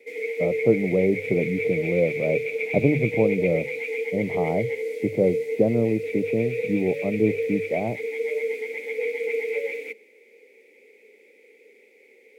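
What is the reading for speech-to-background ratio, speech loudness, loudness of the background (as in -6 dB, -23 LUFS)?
3.0 dB, -25.0 LUFS, -28.0 LUFS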